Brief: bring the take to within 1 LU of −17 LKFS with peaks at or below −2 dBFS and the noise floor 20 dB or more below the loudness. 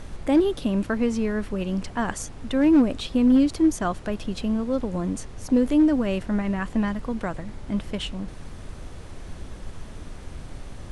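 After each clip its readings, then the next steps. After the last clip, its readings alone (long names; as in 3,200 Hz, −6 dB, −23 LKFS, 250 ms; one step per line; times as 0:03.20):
share of clipped samples 0.4%; peaks flattened at −12.0 dBFS; background noise floor −40 dBFS; target noise floor −44 dBFS; integrated loudness −24.0 LKFS; sample peak −12.0 dBFS; target loudness −17.0 LKFS
→ clipped peaks rebuilt −12 dBFS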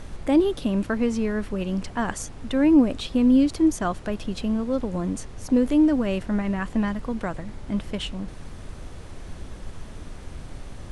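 share of clipped samples 0.0%; background noise floor −40 dBFS; target noise floor −44 dBFS
→ noise reduction from a noise print 6 dB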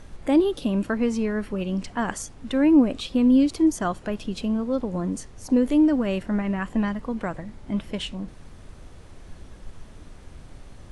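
background noise floor −45 dBFS; integrated loudness −24.0 LKFS; sample peak −8.0 dBFS; target loudness −17.0 LKFS
→ level +7 dB
brickwall limiter −2 dBFS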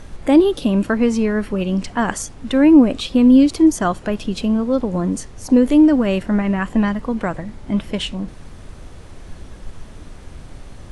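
integrated loudness −17.0 LKFS; sample peak −2.0 dBFS; background noise floor −38 dBFS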